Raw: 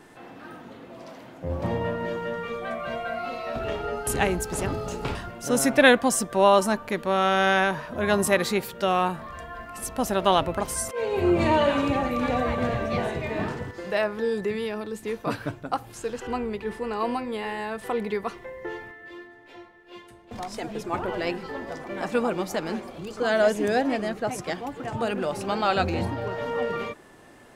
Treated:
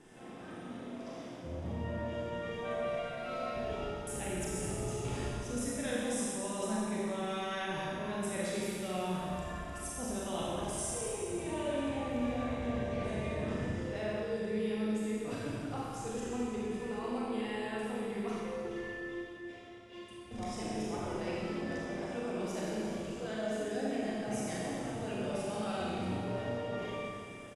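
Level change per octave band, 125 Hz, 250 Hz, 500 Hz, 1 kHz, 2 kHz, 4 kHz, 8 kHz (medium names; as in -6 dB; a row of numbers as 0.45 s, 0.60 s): -7.0 dB, -7.5 dB, -11.0 dB, -14.0 dB, -14.5 dB, -12.0 dB, -8.0 dB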